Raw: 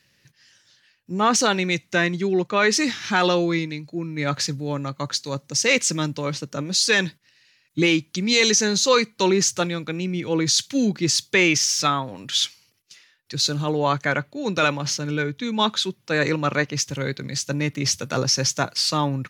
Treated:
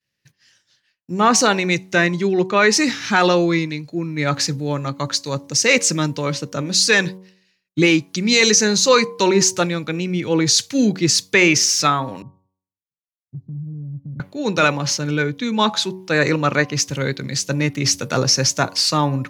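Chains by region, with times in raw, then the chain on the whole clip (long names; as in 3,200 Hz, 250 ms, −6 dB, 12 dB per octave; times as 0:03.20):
0:12.22–0:14.20: inverse Chebyshev low-pass filter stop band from 1,100 Hz, stop band 80 dB + downward compressor 3 to 1, threshold −33 dBFS
whole clip: downward expander −50 dBFS; hum removal 93.66 Hz, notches 12; dynamic equaliser 3,300 Hz, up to −6 dB, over −40 dBFS, Q 4.8; level +4.5 dB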